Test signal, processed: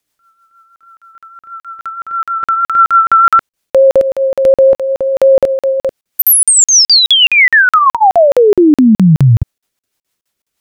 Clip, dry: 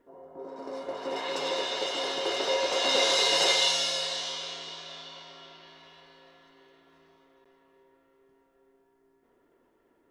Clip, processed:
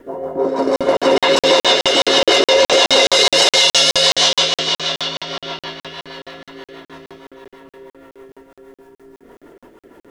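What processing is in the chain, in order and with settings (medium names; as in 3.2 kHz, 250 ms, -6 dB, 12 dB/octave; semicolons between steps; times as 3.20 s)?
rotary cabinet horn 6.3 Hz; in parallel at +0.5 dB: compression, threshold -36 dBFS; on the sum: crackling interface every 0.21 s, samples 2048, zero, from 0.76 s; loudness maximiser +20.5 dB; trim -1.5 dB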